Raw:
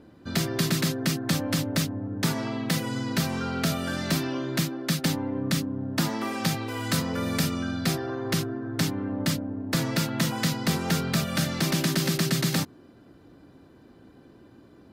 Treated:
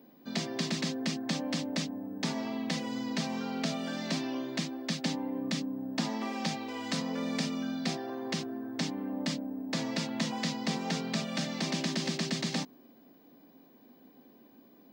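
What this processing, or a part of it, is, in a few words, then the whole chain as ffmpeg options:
old television with a line whistle: -af "highpass=frequency=190:width=0.5412,highpass=frequency=190:width=1.3066,equalizer=frequency=240:width_type=q:width=4:gain=5,equalizer=frequency=340:width_type=q:width=4:gain=-6,equalizer=frequency=760:width_type=q:width=4:gain=3,equalizer=frequency=1400:width_type=q:width=4:gain=-9,lowpass=frequency=6900:width=0.5412,lowpass=frequency=6900:width=1.3066,aeval=exprs='val(0)+0.00112*sin(2*PI*15625*n/s)':channel_layout=same,volume=-5dB"

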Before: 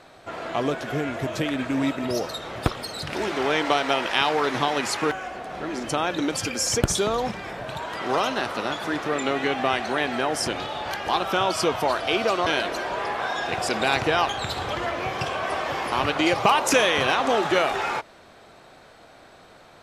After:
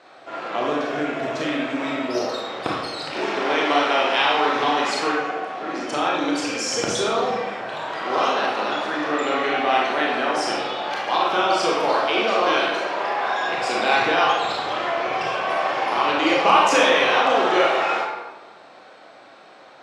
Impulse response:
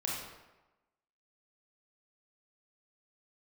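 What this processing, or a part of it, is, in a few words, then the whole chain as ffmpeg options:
supermarket ceiling speaker: -filter_complex "[0:a]highpass=290,lowpass=5700[link_01];[1:a]atrim=start_sample=2205[link_02];[link_01][link_02]afir=irnorm=-1:irlink=0"

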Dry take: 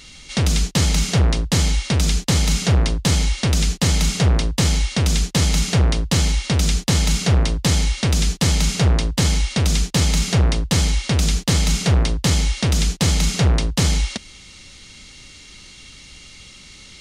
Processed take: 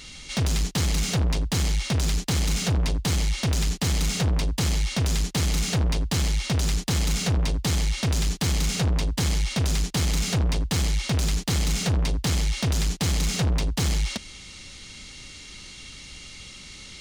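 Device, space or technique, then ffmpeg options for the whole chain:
saturation between pre-emphasis and de-emphasis: -af "highshelf=frequency=4800:gain=6.5,asoftclip=type=tanh:threshold=-19.5dB,highshelf=frequency=4800:gain=-6.5"

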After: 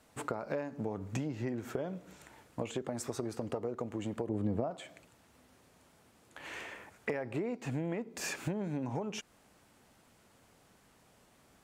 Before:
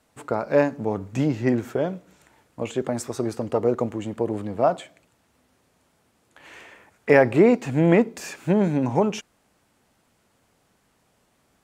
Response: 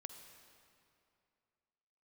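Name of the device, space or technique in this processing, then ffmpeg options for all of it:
serial compression, leveller first: -filter_complex "[0:a]acompressor=threshold=-24dB:ratio=2,acompressor=threshold=-34dB:ratio=8,asettb=1/sr,asplit=3[link_01][link_02][link_03];[link_01]atrim=end=4.294[link_04];[link_02]atrim=start=4.29:end=4.71,asetpts=PTS-STARTPTS,afade=type=in:duration=0.004:curve=qsin,afade=type=out:start_time=0.416:duration=0.004:curve=qsin,tiltshelf=frequency=660:gain=6.5[link_05];[link_03]atrim=start=4.706[link_06];[link_04][link_05]acrossfade=duration=0.004:curve1=hsin:curve2=qsin[link_07];[link_07][link_06]acrossfade=duration=0.004:curve1=qsin:curve2=hsin,volume=1dB"

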